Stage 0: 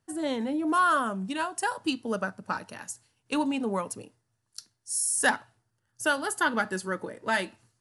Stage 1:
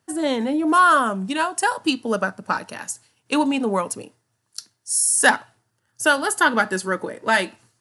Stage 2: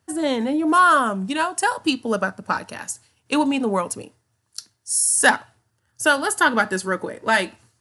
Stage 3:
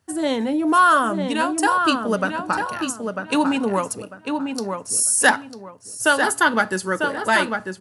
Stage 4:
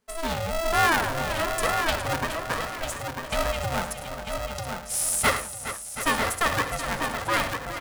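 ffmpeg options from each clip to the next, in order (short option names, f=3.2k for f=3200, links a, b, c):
-af "highpass=f=170:p=1,volume=8.5dB"
-af "equalizer=f=76:t=o:w=0.52:g=15"
-filter_complex "[0:a]asplit=2[a][b];[b]adelay=947,lowpass=f=2.6k:p=1,volume=-5dB,asplit=2[c][d];[d]adelay=947,lowpass=f=2.6k:p=1,volume=0.28,asplit=2[e][f];[f]adelay=947,lowpass=f=2.6k:p=1,volume=0.28,asplit=2[g][h];[h]adelay=947,lowpass=f=2.6k:p=1,volume=0.28[i];[a][c][e][g][i]amix=inputs=5:normalize=0"
-af "aecho=1:1:66|104|414|727:0.237|0.2|0.266|0.237,aeval=exprs='val(0)*sgn(sin(2*PI*330*n/s))':c=same,volume=-7dB"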